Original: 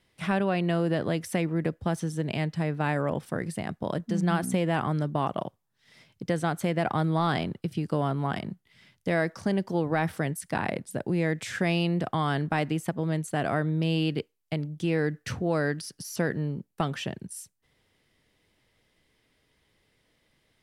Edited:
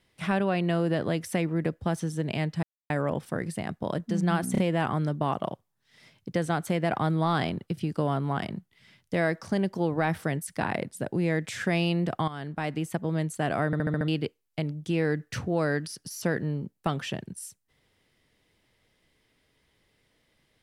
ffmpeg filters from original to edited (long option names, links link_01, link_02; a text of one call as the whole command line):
ffmpeg -i in.wav -filter_complex "[0:a]asplit=12[link_01][link_02][link_03][link_04][link_05][link_06][link_07][link_08][link_09][link_10][link_11][link_12];[link_01]atrim=end=2.63,asetpts=PTS-STARTPTS,afade=type=out:start_time=2.626:duration=0.004:curve=hsin[link_13];[link_02]atrim=start=2.63:end=2.9,asetpts=PTS-STARTPTS,volume=0[link_14];[link_03]atrim=start=2.9:end=4.552,asetpts=PTS-STARTPTS,afade=type=in:duration=0.004:curve=hsin[link_15];[link_04]atrim=start=4.518:end=4.552[link_16];[link_05]atrim=start=4.518:end=12.22,asetpts=PTS-STARTPTS,afade=type=out:start_time=7.698:duration=0.004:curve=hsin:silence=0.199526[link_17];[link_06]atrim=start=12.22:end=13.672,asetpts=PTS-STARTPTS,afade=type=in:duration=0.7:silence=0.199526[link_18];[link_07]atrim=start=13.598:end=13.672[link_19];[link_08]atrim=start=13.598:end=13.672[link_20];[link_09]atrim=start=13.598:end=13.672[link_21];[link_10]atrim=start=13.598:end=13.672[link_22];[link_11]atrim=start=13.598:end=13.672[link_23];[link_12]atrim=start=14.018[link_24];[link_13][link_14][link_15]concat=n=3:v=0:a=1[link_25];[link_25][link_16]acrossfade=duration=0.004:curve1=hsin:curve2=hsin[link_26];[link_17][link_18]concat=n=2:v=0:a=1[link_27];[link_26][link_27]acrossfade=duration=0.004:curve1=hsin:curve2=hsin[link_28];[link_28][link_19]acrossfade=duration=0.004:curve1=hsin:curve2=hsin[link_29];[link_29][link_20]acrossfade=duration=0.004:curve1=hsin:curve2=hsin[link_30];[link_30][link_21]acrossfade=duration=0.004:curve1=hsin:curve2=hsin[link_31];[link_31][link_22]acrossfade=duration=0.004:curve1=hsin:curve2=hsin[link_32];[link_32][link_23]acrossfade=duration=0.004:curve1=hsin:curve2=hsin[link_33];[link_33][link_24]acrossfade=duration=0.004:curve1=hsin:curve2=hsin" out.wav